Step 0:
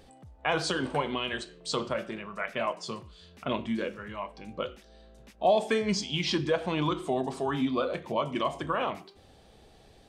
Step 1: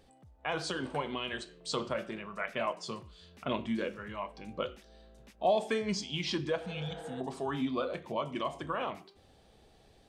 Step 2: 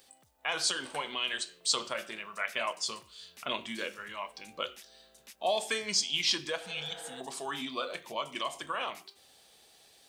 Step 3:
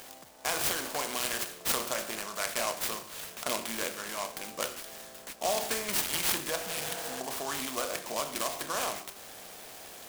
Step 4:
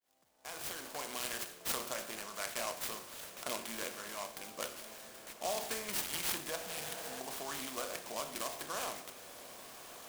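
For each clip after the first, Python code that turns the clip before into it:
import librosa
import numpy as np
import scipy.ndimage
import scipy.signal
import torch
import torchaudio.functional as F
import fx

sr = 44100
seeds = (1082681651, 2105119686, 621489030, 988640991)

y1 = fx.spec_repair(x, sr, seeds[0], start_s=6.68, length_s=0.5, low_hz=260.0, high_hz=2100.0, source='before')
y1 = fx.rider(y1, sr, range_db=4, speed_s=2.0)
y1 = y1 * 10.0 ** (-5.0 / 20.0)
y2 = fx.tilt_eq(y1, sr, slope=4.5)
y3 = fx.bin_compress(y2, sr, power=0.6)
y3 = fx.noise_mod_delay(y3, sr, seeds[1], noise_hz=5800.0, depth_ms=0.076)
y3 = y3 * 10.0 ** (-2.5 / 20.0)
y4 = fx.fade_in_head(y3, sr, length_s=1.21)
y4 = fx.echo_diffused(y4, sr, ms=1287, feedback_pct=45, wet_db=-14.0)
y4 = y4 * 10.0 ** (-7.0 / 20.0)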